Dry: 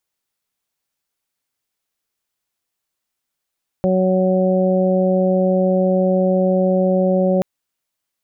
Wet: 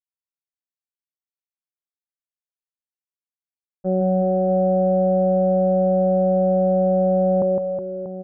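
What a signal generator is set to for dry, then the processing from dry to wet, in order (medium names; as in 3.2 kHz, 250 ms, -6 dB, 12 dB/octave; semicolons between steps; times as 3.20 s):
steady additive tone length 3.58 s, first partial 186 Hz, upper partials -5/0/-11.5 dB, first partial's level -16.5 dB
low-pass 1 kHz 24 dB/octave; expander -11 dBFS; reverse bouncing-ball echo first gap 160 ms, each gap 1.3×, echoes 5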